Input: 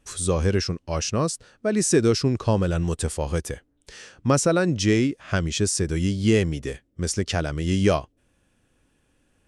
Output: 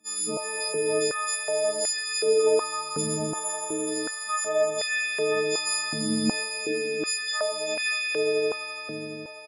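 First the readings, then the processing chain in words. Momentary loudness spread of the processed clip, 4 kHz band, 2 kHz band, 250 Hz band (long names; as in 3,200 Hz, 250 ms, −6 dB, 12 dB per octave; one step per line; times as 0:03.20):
5 LU, +3.0 dB, +3.5 dB, −9.0 dB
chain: every partial snapped to a pitch grid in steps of 6 semitones
downward compressor 3 to 1, threshold −25 dBFS, peak gain reduction 13 dB
double-tracking delay 45 ms −3 dB
echo that builds up and dies away 84 ms, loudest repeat 5, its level −7.5 dB
high-pass on a step sequencer 2.7 Hz 240–1,900 Hz
level −7.5 dB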